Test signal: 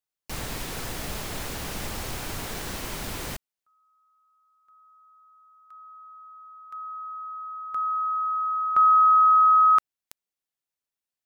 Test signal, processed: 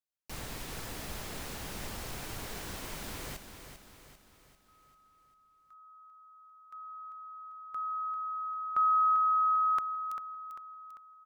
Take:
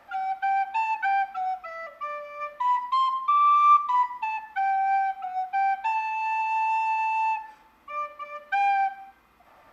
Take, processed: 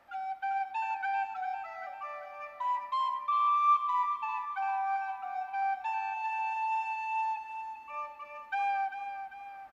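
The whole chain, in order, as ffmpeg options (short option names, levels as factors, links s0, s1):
-af "aecho=1:1:395|790|1185|1580|1975|2370:0.355|0.174|0.0852|0.0417|0.0205|0.01,volume=0.398"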